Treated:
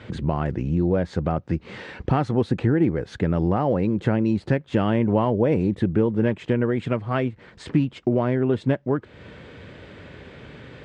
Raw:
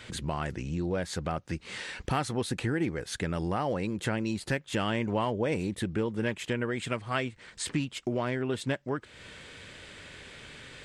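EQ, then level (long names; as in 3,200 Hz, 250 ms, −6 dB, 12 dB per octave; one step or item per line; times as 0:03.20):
high-pass filter 64 Hz
low-pass filter 4,700 Hz 12 dB per octave
tilt shelving filter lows +8 dB, about 1,300 Hz
+3.0 dB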